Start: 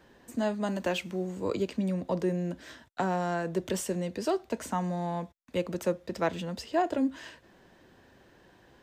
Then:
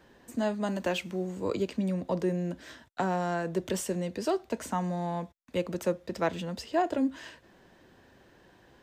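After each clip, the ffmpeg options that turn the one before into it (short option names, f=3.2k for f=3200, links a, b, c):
-af anull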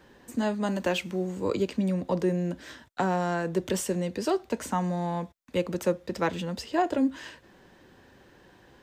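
-af "bandreject=f=660:w=12,volume=3dB"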